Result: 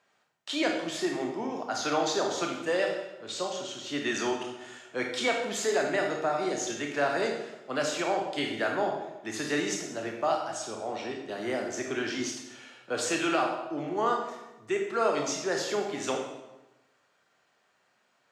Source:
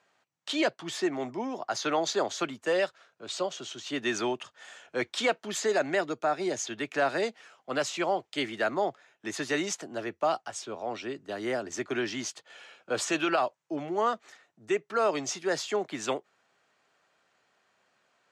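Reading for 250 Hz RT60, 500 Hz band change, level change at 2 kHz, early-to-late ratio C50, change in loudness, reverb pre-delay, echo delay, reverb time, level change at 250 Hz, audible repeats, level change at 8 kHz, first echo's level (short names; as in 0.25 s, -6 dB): 1.1 s, +0.5 dB, +0.5 dB, 4.0 dB, +0.5 dB, 21 ms, none, 1.0 s, +1.0 dB, none, +1.0 dB, none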